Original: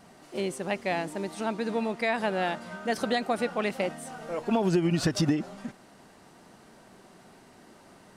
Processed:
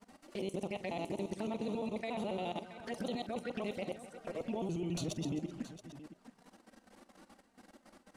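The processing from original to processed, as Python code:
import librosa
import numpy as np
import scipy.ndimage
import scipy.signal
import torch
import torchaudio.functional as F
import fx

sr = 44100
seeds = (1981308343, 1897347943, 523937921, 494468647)

p1 = fx.local_reverse(x, sr, ms=70.0)
p2 = fx.level_steps(p1, sr, step_db=18)
p3 = fx.env_flanger(p2, sr, rest_ms=5.0, full_db=-33.5)
y = p3 + fx.echo_multitap(p3, sr, ms=(46, 260, 674), db=(-16.0, -16.0, -14.0), dry=0)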